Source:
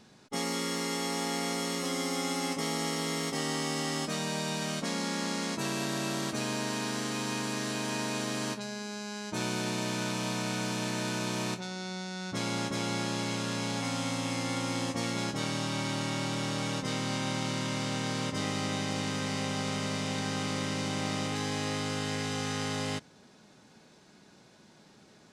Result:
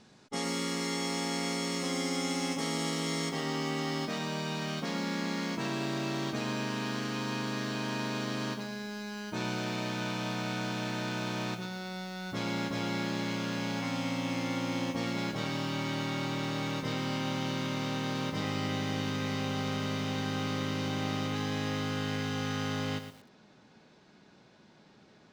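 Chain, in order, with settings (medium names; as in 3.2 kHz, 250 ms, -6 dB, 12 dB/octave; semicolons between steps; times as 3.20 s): low-pass 8.9 kHz 12 dB/octave, from 3.29 s 4.4 kHz; bit-crushed delay 115 ms, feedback 35%, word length 8-bit, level -9 dB; trim -1 dB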